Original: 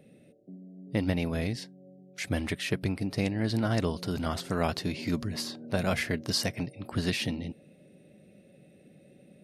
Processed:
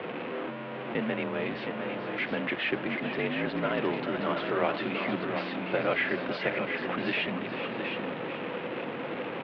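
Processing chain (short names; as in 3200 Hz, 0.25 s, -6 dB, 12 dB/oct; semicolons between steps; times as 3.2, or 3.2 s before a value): zero-crossing step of -27 dBFS; echo 0.715 s -6.5 dB; mistuned SSB -53 Hz 300–3100 Hz; echo 0.436 s -10 dB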